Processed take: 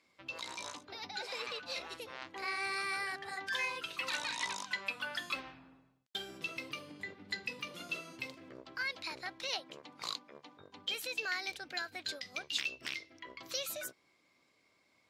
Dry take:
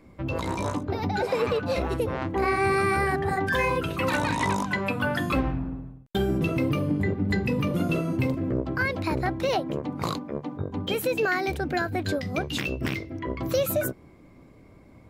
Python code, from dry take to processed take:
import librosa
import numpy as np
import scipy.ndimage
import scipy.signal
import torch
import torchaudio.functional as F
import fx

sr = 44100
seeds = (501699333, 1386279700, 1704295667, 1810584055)

y = fx.bandpass_q(x, sr, hz=4600.0, q=1.2)